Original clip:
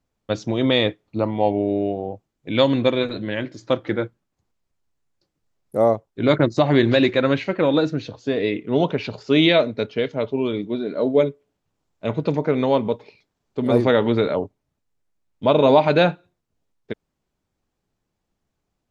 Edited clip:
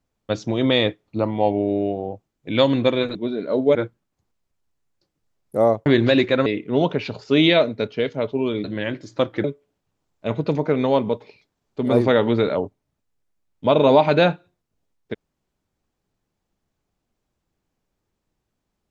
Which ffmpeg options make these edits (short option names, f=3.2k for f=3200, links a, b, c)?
-filter_complex "[0:a]asplit=7[a][b][c][d][e][f][g];[a]atrim=end=3.152[h];[b]atrim=start=10.628:end=11.232[i];[c]atrim=start=3.948:end=6.062[j];[d]atrim=start=6.708:end=7.312[k];[e]atrim=start=8.448:end=10.632[l];[f]atrim=start=3.148:end=3.952[m];[g]atrim=start=11.228[n];[h][i]acrossfade=d=0.004:c1=hsin:c2=hsin[o];[o][j]acrossfade=d=0.004:c1=hsin:c2=hsin[p];[p][k]acrossfade=d=0.004:c1=hsin:c2=hsin[q];[q][l]acrossfade=d=0.004:c1=hsin:c2=hsin[r];[r][m]acrossfade=d=0.004:c1=hsin:c2=hsin[s];[s][n]acrossfade=d=0.004:c1=hsin:c2=hsin"